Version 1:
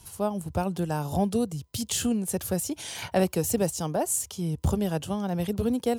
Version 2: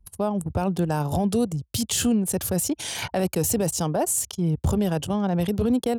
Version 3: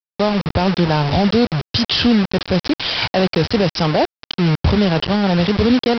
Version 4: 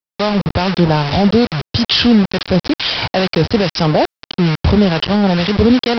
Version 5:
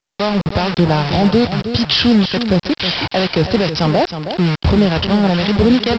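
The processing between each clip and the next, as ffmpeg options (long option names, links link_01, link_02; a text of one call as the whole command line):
ffmpeg -i in.wav -af "anlmdn=0.631,alimiter=limit=-20.5dB:level=0:latency=1:release=15,volume=6dB" out.wav
ffmpeg -i in.wav -af "highshelf=frequency=4100:gain=11.5,aresample=11025,acrusher=bits=4:mix=0:aa=0.000001,aresample=44100,volume=7.5dB" out.wav
ffmpeg -i in.wav -filter_complex "[0:a]acrossover=split=970[link_01][link_02];[link_01]aeval=exprs='val(0)*(1-0.5/2+0.5/2*cos(2*PI*2.3*n/s))':channel_layout=same[link_03];[link_02]aeval=exprs='val(0)*(1-0.5/2-0.5/2*cos(2*PI*2.3*n/s))':channel_layout=same[link_04];[link_03][link_04]amix=inputs=2:normalize=0,areverse,acompressor=mode=upward:threshold=-22dB:ratio=2.5,areverse,volume=4.5dB" out.wav
ffmpeg -i in.wav -af "aecho=1:1:318:0.335,volume=-1dB" -ar 16000 -c:a pcm_mulaw out.wav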